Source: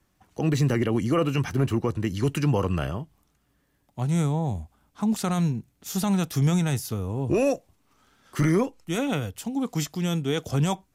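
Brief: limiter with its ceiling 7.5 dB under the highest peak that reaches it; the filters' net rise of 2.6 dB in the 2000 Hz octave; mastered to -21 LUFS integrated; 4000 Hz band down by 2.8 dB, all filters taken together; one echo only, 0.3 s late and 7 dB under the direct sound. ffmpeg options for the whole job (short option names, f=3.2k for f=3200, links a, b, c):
-af "equalizer=f=2k:t=o:g=5,equalizer=f=4k:t=o:g=-6,alimiter=limit=-20dB:level=0:latency=1,aecho=1:1:300:0.447,volume=8dB"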